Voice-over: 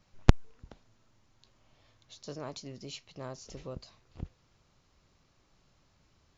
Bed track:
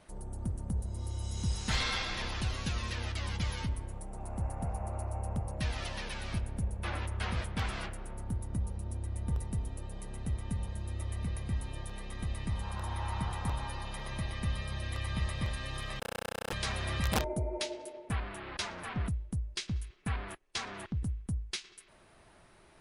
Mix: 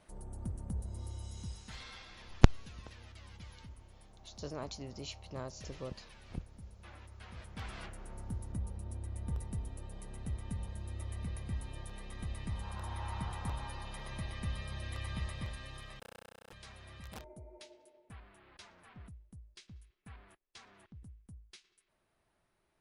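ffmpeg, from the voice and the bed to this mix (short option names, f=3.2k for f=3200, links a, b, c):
-filter_complex "[0:a]adelay=2150,volume=-1dB[a];[1:a]volume=8dB,afade=t=out:st=0.97:d=0.74:silence=0.237137,afade=t=in:st=7.29:d=0.84:silence=0.237137,afade=t=out:st=15.06:d=1.32:silence=0.211349[b];[a][b]amix=inputs=2:normalize=0"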